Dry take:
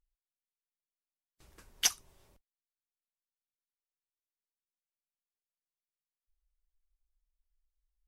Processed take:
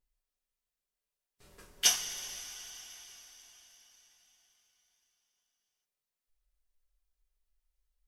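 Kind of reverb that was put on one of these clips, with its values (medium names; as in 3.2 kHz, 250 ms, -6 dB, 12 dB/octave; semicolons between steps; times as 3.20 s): two-slope reverb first 0.32 s, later 4.7 s, from -18 dB, DRR -5 dB; trim -2 dB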